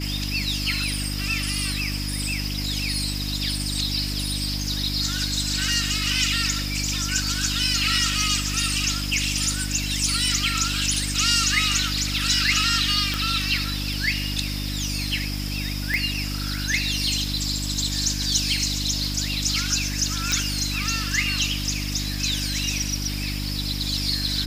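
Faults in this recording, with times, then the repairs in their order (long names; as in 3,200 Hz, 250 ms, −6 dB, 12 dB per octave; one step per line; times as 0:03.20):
mains hum 50 Hz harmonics 6 −29 dBFS
0:13.14: click
0:15.94: click −11 dBFS
0:20.32: click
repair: click removal
hum removal 50 Hz, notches 6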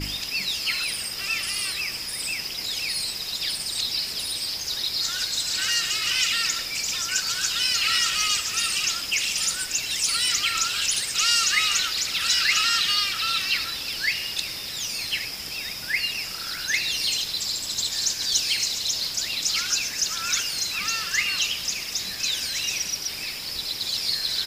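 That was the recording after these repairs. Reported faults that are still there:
none of them is left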